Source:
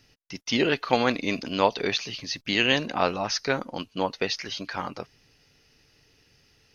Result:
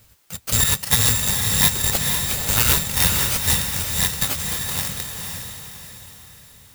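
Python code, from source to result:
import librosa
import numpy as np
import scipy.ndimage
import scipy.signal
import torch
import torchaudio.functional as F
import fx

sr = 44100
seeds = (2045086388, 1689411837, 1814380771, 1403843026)

p1 = fx.bit_reversed(x, sr, seeds[0], block=128)
p2 = fx.peak_eq(p1, sr, hz=410.0, db=5.5, octaves=0.61)
p3 = fx.schmitt(p2, sr, flips_db=-15.5)
p4 = p2 + (p3 * librosa.db_to_amplitude(-8.0))
p5 = (np.kron(p4[::3], np.eye(3)[0]) * 3)[:len(p4)]
p6 = fx.peak_eq(p5, sr, hz=72.0, db=14.5, octaves=2.8)
p7 = p6 + fx.echo_diffused(p6, sr, ms=498, feedback_pct=44, wet_db=-4, dry=0)
p8 = fx.quant_dither(p7, sr, seeds[1], bits=10, dither='triangular')
y = p8 * librosa.db_to_amplitude(-1.0)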